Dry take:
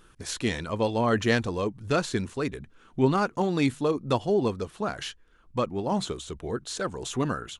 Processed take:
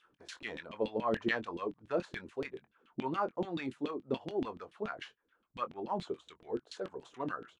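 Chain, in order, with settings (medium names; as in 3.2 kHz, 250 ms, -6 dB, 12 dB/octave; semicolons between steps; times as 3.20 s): LFO band-pass saw down 7 Hz 230–3300 Hz; doubling 23 ms -12.5 dB; trim -2 dB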